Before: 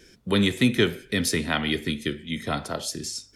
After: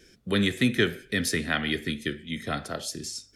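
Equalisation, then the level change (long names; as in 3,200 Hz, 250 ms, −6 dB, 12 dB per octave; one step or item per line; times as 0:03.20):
dynamic equaliser 1,700 Hz, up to +7 dB, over −45 dBFS, Q 4
parametric band 950 Hz −9.5 dB 0.22 octaves
−3.0 dB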